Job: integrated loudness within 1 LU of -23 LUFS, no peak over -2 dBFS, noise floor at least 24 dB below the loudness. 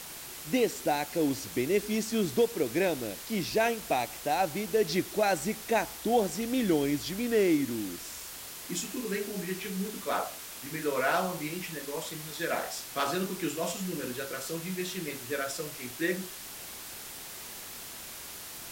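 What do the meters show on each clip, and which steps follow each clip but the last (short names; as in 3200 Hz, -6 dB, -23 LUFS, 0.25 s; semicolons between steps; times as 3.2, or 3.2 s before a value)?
noise floor -43 dBFS; noise floor target -56 dBFS; loudness -31.5 LUFS; peak -14.0 dBFS; loudness target -23.0 LUFS
-> noise print and reduce 13 dB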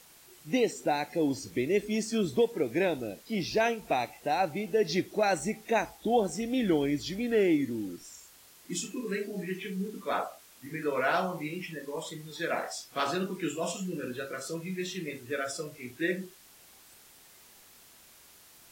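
noise floor -56 dBFS; loudness -31.0 LUFS; peak -14.5 dBFS; loudness target -23.0 LUFS
-> gain +8 dB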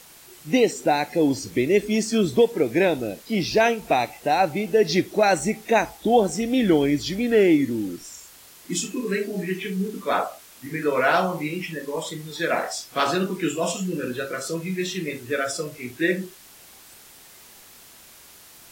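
loudness -23.0 LUFS; peak -6.5 dBFS; noise floor -48 dBFS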